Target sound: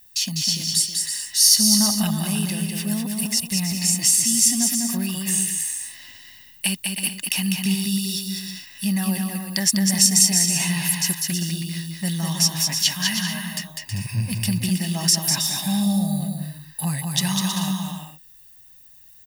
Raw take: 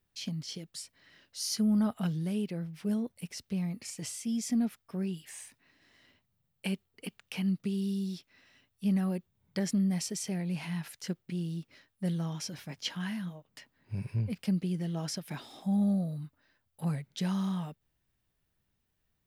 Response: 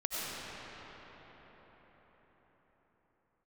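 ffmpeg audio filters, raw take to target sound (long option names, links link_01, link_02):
-filter_complex "[0:a]crystalizer=i=9:c=0,asplit=2[link_01][link_02];[link_02]acompressor=threshold=-36dB:ratio=6,volume=0.5dB[link_03];[link_01][link_03]amix=inputs=2:normalize=0,aecho=1:1:1.1:0.68,aecho=1:1:200|320|392|435.2|461.1:0.631|0.398|0.251|0.158|0.1"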